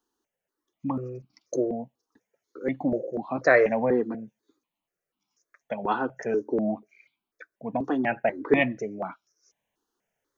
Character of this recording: notches that jump at a steady rate 4.1 Hz 600–1800 Hz

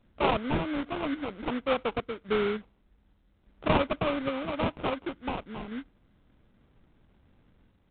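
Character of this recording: random-step tremolo; aliases and images of a low sample rate 1.8 kHz, jitter 20%; µ-law

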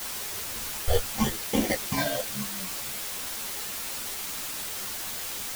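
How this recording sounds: aliases and images of a low sample rate 1.3 kHz, jitter 0%; phasing stages 8, 0.8 Hz, lowest notch 270–1400 Hz; a quantiser's noise floor 6-bit, dither triangular; a shimmering, thickened sound

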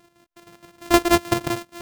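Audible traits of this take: a buzz of ramps at a fixed pitch in blocks of 128 samples; chopped level 6.4 Hz, depth 60%, duty 55%

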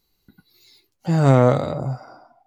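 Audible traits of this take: noise floor -71 dBFS; spectral tilt -7.0 dB/octave

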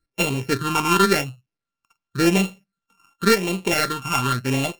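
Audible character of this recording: a buzz of ramps at a fixed pitch in blocks of 32 samples; phasing stages 8, 0.91 Hz, lowest notch 500–1400 Hz; IMA ADPCM

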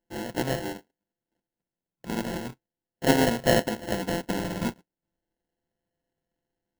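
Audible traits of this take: a buzz of ramps at a fixed pitch in blocks of 64 samples; phasing stages 8, 0.37 Hz, lowest notch 790–1700 Hz; aliases and images of a low sample rate 1.2 kHz, jitter 0%

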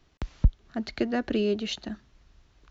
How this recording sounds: noise floor -64 dBFS; spectral tilt -5.5 dB/octave

